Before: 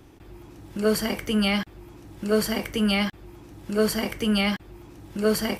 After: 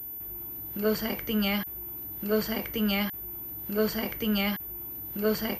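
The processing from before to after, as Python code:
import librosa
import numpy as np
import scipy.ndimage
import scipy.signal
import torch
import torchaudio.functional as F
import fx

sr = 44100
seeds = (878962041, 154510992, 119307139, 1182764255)

y = fx.pwm(x, sr, carrier_hz=14000.0)
y = y * 10.0 ** (-4.5 / 20.0)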